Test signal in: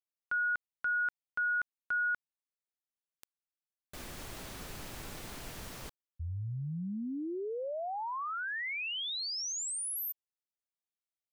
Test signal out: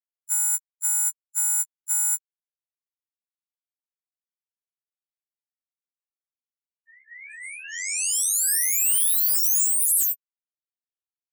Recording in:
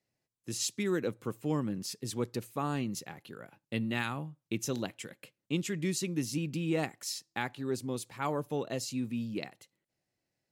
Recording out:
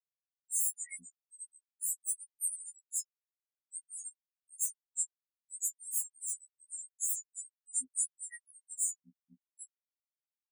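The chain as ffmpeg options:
ffmpeg -i in.wav -af "aeval=exprs='(mod(50.1*val(0)+1,2)-1)/50.1':channel_layout=same,equalizer=frequency=125:width_type=o:width=1:gain=-5,equalizer=frequency=250:width_type=o:width=1:gain=8,equalizer=frequency=500:width_type=o:width=1:gain=4,equalizer=frequency=1000:width_type=o:width=1:gain=-7,equalizer=frequency=2000:width_type=o:width=1:gain=9,equalizer=frequency=4000:width_type=o:width=1:gain=-7,equalizer=frequency=8000:width_type=o:width=1:gain=8,acompressor=threshold=-43dB:ratio=4:attack=0.17:release=40:knee=1:detection=rms,crystalizer=i=7:c=0,afftfilt=real='re*gte(hypot(re,im),0.0708)':imag='im*gte(hypot(re,im),0.0708)':win_size=1024:overlap=0.75,asoftclip=type=tanh:threshold=-18dB,afftfilt=real='re*2*eq(mod(b,4),0)':imag='im*2*eq(mod(b,4),0)':win_size=2048:overlap=0.75,volume=8.5dB" out.wav

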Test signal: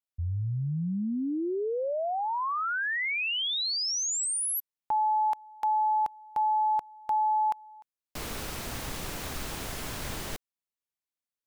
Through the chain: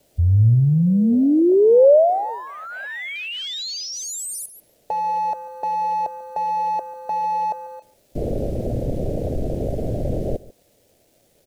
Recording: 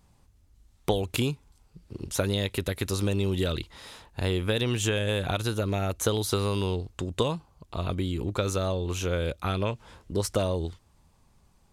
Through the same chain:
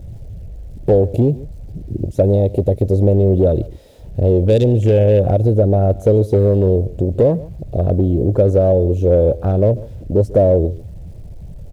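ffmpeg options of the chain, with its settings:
ffmpeg -i in.wav -af "aeval=exprs='val(0)+0.5*0.015*sgn(val(0))':channel_layout=same,afwtdn=0.0282,volume=22.5dB,asoftclip=hard,volume=-22.5dB,equalizer=frequency=110:width=2.9:gain=4.5,aresample=32000,aresample=44100,acrusher=bits=9:mix=0:aa=0.000001,lowshelf=frequency=800:width_type=q:width=3:gain=11,aecho=1:1:143:0.1" out.wav

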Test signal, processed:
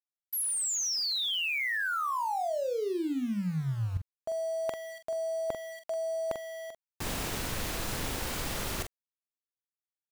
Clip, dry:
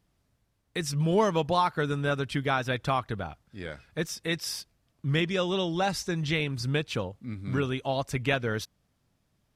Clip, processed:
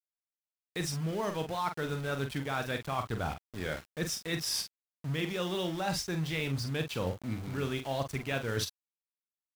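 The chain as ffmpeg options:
ffmpeg -i in.wav -filter_complex "[0:a]areverse,acompressor=threshold=-36dB:ratio=20,areverse,aeval=exprs='val(0)*gte(abs(val(0)),0.00422)':channel_layout=same,asplit=2[link_01][link_02];[link_02]adelay=44,volume=-7.5dB[link_03];[link_01][link_03]amix=inputs=2:normalize=0,volume=6dB" out.wav

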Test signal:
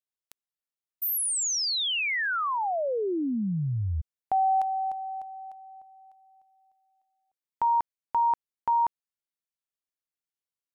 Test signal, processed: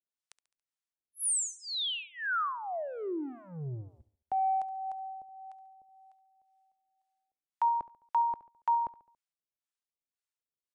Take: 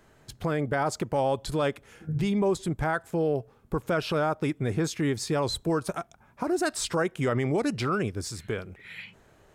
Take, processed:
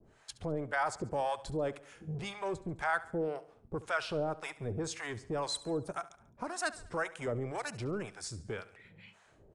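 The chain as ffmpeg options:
ffmpeg -i in.wav -filter_complex "[0:a]adynamicequalizer=threshold=0.00447:dfrequency=3400:dqfactor=0.88:tfrequency=3400:tqfactor=0.88:attack=5:release=100:ratio=0.375:range=2.5:mode=cutabove:tftype=bell,acrossover=split=480[link_01][link_02];[link_01]asoftclip=type=tanh:threshold=-35dB[link_03];[link_03][link_02]amix=inputs=2:normalize=0,acrossover=split=660[link_04][link_05];[link_04]aeval=exprs='val(0)*(1-1/2+1/2*cos(2*PI*1.9*n/s))':channel_layout=same[link_06];[link_05]aeval=exprs='val(0)*(1-1/2-1/2*cos(2*PI*1.9*n/s))':channel_layout=same[link_07];[link_06][link_07]amix=inputs=2:normalize=0,aecho=1:1:70|140|210|280:0.133|0.0653|0.032|0.0157,aresample=22050,aresample=44100" out.wav

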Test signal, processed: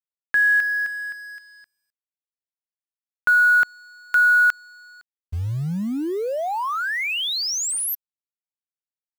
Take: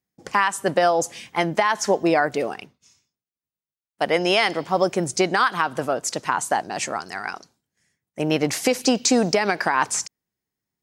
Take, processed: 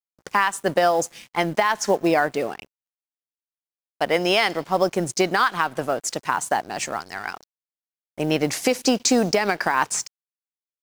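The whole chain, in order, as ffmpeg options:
ffmpeg -i in.wav -af "acrusher=bits=7:mode=log:mix=0:aa=0.000001,aeval=exprs='sgn(val(0))*max(abs(val(0))-0.00668,0)':channel_layout=same" out.wav

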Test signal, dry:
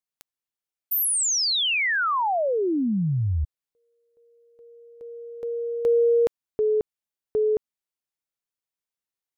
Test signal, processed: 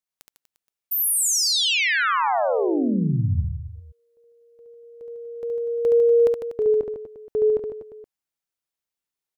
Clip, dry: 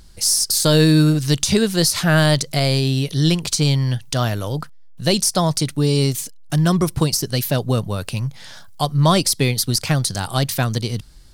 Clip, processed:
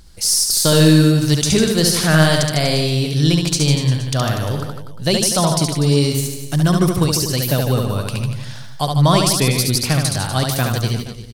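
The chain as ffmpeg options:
ffmpeg -i in.wav -af "aecho=1:1:70|150.5|243.1|349.5|472:0.631|0.398|0.251|0.158|0.1" out.wav

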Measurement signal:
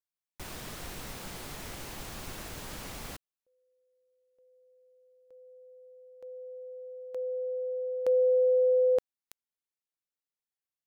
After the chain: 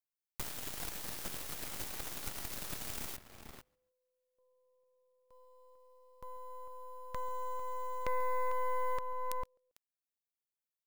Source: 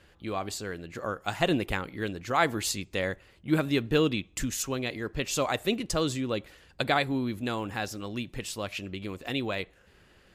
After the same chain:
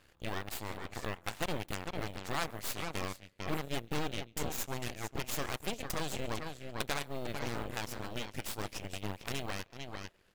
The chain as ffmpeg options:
ffmpeg -i in.wav -filter_complex "[0:a]asplit=2[link_01][link_02];[link_02]acrusher=bits=5:mode=log:mix=0:aa=0.000001,volume=-11dB[link_03];[link_01][link_03]amix=inputs=2:normalize=0,highshelf=frequency=10000:gain=9.5,asplit=2[link_04][link_05];[link_05]adelay=449,volume=-7dB,highshelf=frequency=4000:gain=-10.1[link_06];[link_04][link_06]amix=inputs=2:normalize=0,acompressor=threshold=-40dB:ratio=2.5:attack=8.6:release=661:knee=6:detection=rms,asplit=2[link_07][link_08];[link_08]aecho=0:1:139|278:0.0891|0.0285[link_09];[link_07][link_09]amix=inputs=2:normalize=0,aeval=exprs='0.0891*(cos(1*acos(clip(val(0)/0.0891,-1,1)))-cos(1*PI/2))+0.0141*(cos(3*acos(clip(val(0)/0.0891,-1,1)))-cos(3*PI/2))+0.02*(cos(6*acos(clip(val(0)/0.0891,-1,1)))-cos(6*PI/2))+0.00447*(cos(7*acos(clip(val(0)/0.0891,-1,1)))-cos(7*PI/2))+0.0282*(cos(8*acos(clip(val(0)/0.0891,-1,1)))-cos(8*PI/2))':channel_layout=same,volume=4dB" out.wav

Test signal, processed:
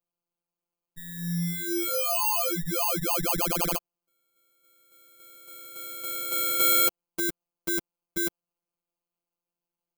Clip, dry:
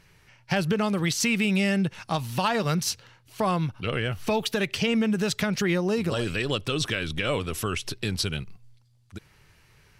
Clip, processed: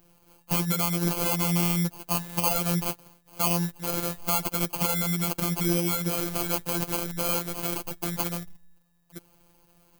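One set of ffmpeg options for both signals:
ffmpeg -i in.wav -af "acrusher=samples=24:mix=1:aa=0.000001,afftfilt=real='hypot(re,im)*cos(PI*b)':imag='0':win_size=1024:overlap=0.75,aemphasis=mode=production:type=50fm" out.wav

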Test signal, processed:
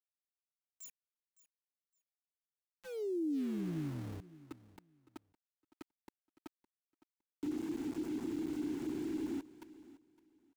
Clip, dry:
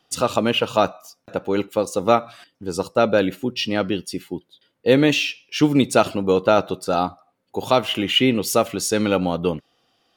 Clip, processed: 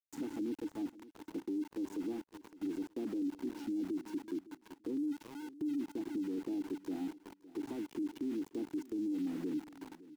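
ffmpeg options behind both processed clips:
ffmpeg -i in.wav -filter_complex "[0:a]aeval=exprs='(tanh(2.82*val(0)+0.35)-tanh(0.35))/2.82':channel_layout=same,asplit=3[link_01][link_02][link_03];[link_01]bandpass=frequency=300:width_type=q:width=8,volume=0dB[link_04];[link_02]bandpass=frequency=870:width_type=q:width=8,volume=-6dB[link_05];[link_03]bandpass=frequency=2240:width_type=q:width=8,volume=-9dB[link_06];[link_04][link_05][link_06]amix=inputs=3:normalize=0,highshelf=frequency=7400:gain=-4.5,acompressor=threshold=-38dB:ratio=4,firequalizer=gain_entry='entry(190,0);entry(330,8);entry(920,-18);entry(1800,-27);entry(7100,7);entry(16000,-24)':delay=0.05:min_phase=1,asplit=2[link_07][link_08];[link_08]adelay=374,lowpass=frequency=4400:poles=1,volume=-17dB,asplit=2[link_09][link_10];[link_10]adelay=374,lowpass=frequency=4400:poles=1,volume=0.49,asplit=2[link_11][link_12];[link_12]adelay=374,lowpass=frequency=4400:poles=1,volume=0.49,asplit=2[link_13][link_14];[link_14]adelay=374,lowpass=frequency=4400:poles=1,volume=0.49[link_15];[link_09][link_11][link_13][link_15]amix=inputs=4:normalize=0[link_16];[link_07][link_16]amix=inputs=2:normalize=0,aeval=exprs='val(0)*gte(abs(val(0)),0.00422)':channel_layout=same,alimiter=level_in=8.5dB:limit=-24dB:level=0:latency=1:release=12,volume=-8.5dB,asplit=2[link_17][link_18];[link_18]aecho=0:1:561|1122:0.112|0.0236[link_19];[link_17][link_19]amix=inputs=2:normalize=0,acrossover=split=390[link_20][link_21];[link_21]acompressor=threshold=-47dB:ratio=6[link_22];[link_20][link_22]amix=inputs=2:normalize=0,volume=2dB" out.wav

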